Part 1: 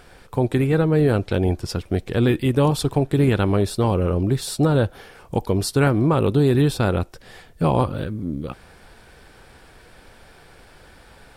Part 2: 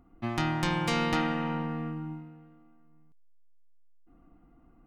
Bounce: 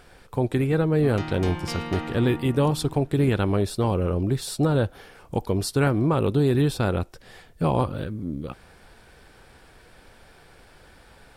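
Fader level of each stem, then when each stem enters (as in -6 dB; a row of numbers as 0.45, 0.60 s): -3.5, -5.0 dB; 0.00, 0.80 s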